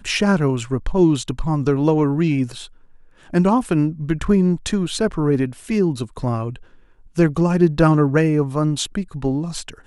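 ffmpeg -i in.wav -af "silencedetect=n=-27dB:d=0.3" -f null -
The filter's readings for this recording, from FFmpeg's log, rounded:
silence_start: 2.64
silence_end: 3.33 | silence_duration: 0.69
silence_start: 6.56
silence_end: 7.18 | silence_duration: 0.62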